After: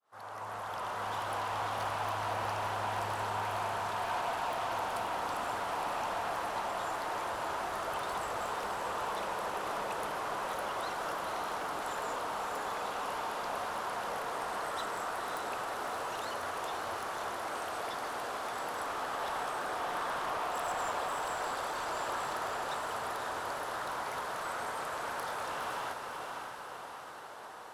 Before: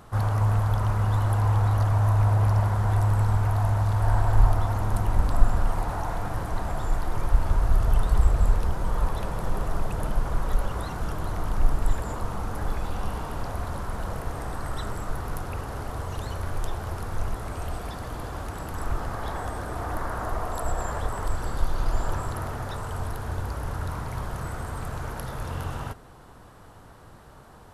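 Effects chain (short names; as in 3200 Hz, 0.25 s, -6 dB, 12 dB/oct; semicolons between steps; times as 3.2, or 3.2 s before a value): opening faded in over 1.13 s; HPF 540 Hz 12 dB/oct; high shelf 10000 Hz -9 dB; soft clip -36.5 dBFS, distortion -10 dB; diffused feedback echo 0.552 s, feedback 58%, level -4.5 dB; gain +3 dB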